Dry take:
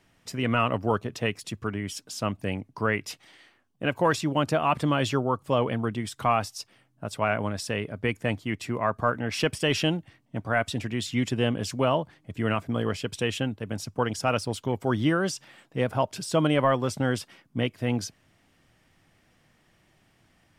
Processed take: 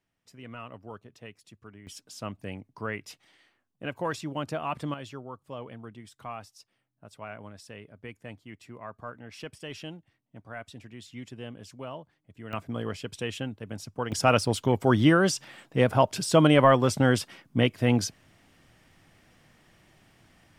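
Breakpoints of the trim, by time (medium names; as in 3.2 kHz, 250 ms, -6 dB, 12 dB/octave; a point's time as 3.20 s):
-18 dB
from 1.87 s -8 dB
from 4.94 s -15.5 dB
from 12.53 s -5.5 dB
from 14.12 s +4 dB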